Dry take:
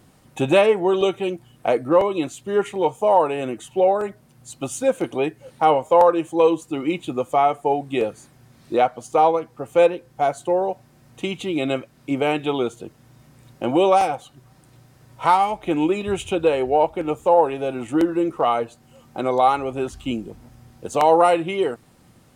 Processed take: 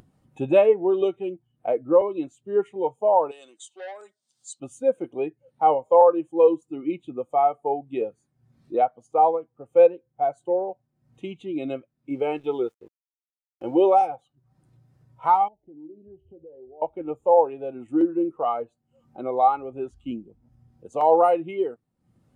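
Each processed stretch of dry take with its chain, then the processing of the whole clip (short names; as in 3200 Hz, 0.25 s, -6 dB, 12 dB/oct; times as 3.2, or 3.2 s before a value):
3.31–4.6 HPF 1200 Hz 6 dB/oct + band shelf 5400 Hz +14 dB + core saturation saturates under 2700 Hz
12.1–14.06 comb 2.3 ms, depth 31% + sample gate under -35.5 dBFS
15.48–16.82 compressor 2:1, threshold -31 dBFS + running mean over 37 samples + resonator 77 Hz, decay 0.61 s, mix 50%
whole clip: upward compressor, threshold -33 dBFS; spectral expander 1.5:1; gain -1 dB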